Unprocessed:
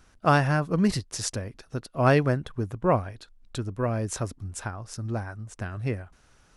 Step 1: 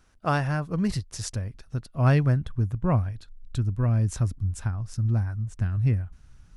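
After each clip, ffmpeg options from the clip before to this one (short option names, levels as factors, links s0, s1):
-af "asubboost=boost=7.5:cutoff=170,volume=0.596"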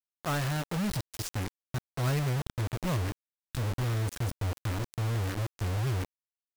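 -af "asoftclip=type=tanh:threshold=0.106,acrusher=bits=4:mix=0:aa=0.000001,volume=0.631"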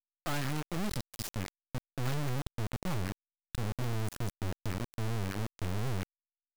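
-af "aeval=exprs='max(val(0),0)':c=same"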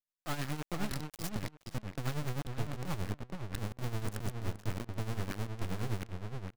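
-filter_complex "[0:a]asplit=2[s0][s1];[s1]adelay=472,lowpass=f=3500:p=1,volume=0.596,asplit=2[s2][s3];[s3]adelay=472,lowpass=f=3500:p=1,volume=0.2,asplit=2[s4][s5];[s5]adelay=472,lowpass=f=3500:p=1,volume=0.2[s6];[s0][s2][s4][s6]amix=inputs=4:normalize=0,tremolo=f=9.6:d=0.69"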